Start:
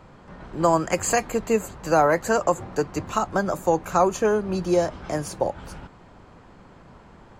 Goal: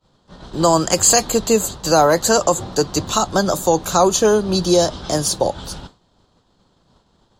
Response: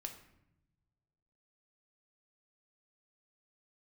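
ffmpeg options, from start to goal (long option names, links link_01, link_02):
-filter_complex "[0:a]agate=range=-33dB:threshold=-36dB:ratio=3:detection=peak,highshelf=frequency=2900:width_type=q:width=3:gain=8,asplit=2[link_01][link_02];[link_02]alimiter=limit=-13.5dB:level=0:latency=1:release=23,volume=0dB[link_03];[link_01][link_03]amix=inputs=2:normalize=0,volume=1dB"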